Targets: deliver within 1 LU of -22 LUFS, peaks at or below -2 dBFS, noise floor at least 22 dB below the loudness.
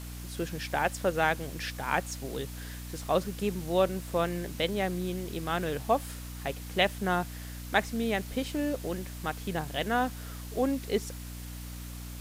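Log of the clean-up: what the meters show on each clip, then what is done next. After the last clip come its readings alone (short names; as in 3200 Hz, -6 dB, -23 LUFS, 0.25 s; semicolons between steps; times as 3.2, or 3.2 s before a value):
hum 60 Hz; harmonics up to 300 Hz; hum level -39 dBFS; noise floor -41 dBFS; noise floor target -54 dBFS; loudness -31.5 LUFS; peak -9.5 dBFS; loudness target -22.0 LUFS
-> notches 60/120/180/240/300 Hz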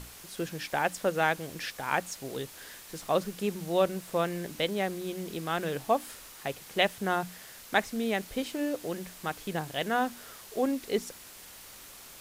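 hum none; noise floor -49 dBFS; noise floor target -54 dBFS
-> denoiser 6 dB, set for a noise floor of -49 dBFS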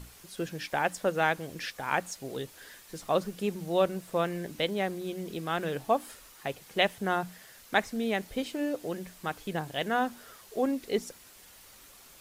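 noise floor -54 dBFS; loudness -31.5 LUFS; peak -9.5 dBFS; loudness target -22.0 LUFS
-> gain +9.5 dB; limiter -2 dBFS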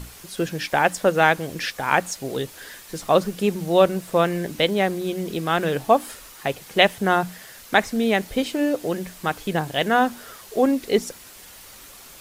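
loudness -22.0 LUFS; peak -2.0 dBFS; noise floor -44 dBFS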